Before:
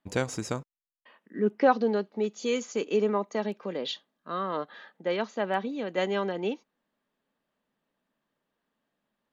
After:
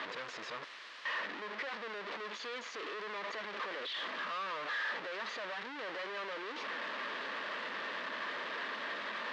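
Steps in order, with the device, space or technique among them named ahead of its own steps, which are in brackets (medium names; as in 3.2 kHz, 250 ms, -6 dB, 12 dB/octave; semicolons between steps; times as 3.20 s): home computer beeper (one-bit comparator; cabinet simulation 520–4100 Hz, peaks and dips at 770 Hz -7 dB, 1.1 kHz +4 dB, 1.8 kHz +6 dB); trim -7 dB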